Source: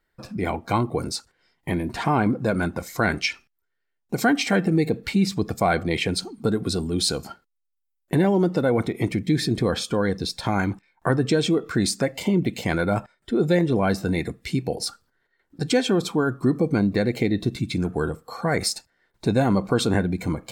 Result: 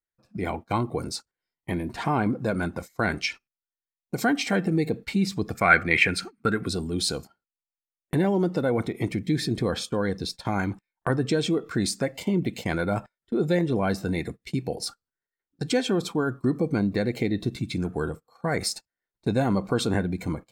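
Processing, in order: 5.55–6.66 band shelf 1800 Hz +13.5 dB 1.3 oct; gate -32 dBFS, range -20 dB; gain -3.5 dB

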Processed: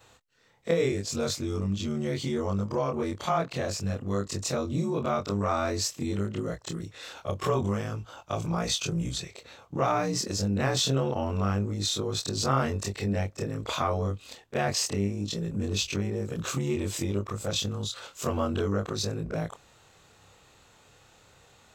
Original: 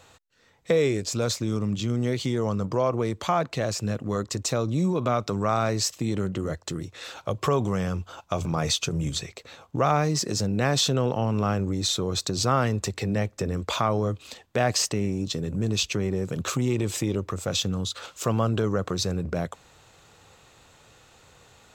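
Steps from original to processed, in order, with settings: short-time reversal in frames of 60 ms

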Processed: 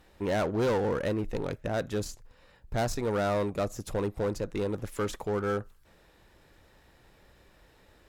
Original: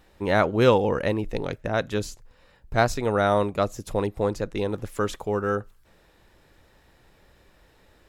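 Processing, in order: soft clip -21.5 dBFS, distortion -8 dB; added harmonics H 8 -27 dB, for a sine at -21.5 dBFS; dynamic EQ 3000 Hz, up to -4 dB, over -45 dBFS, Q 1.1; gain -1.5 dB

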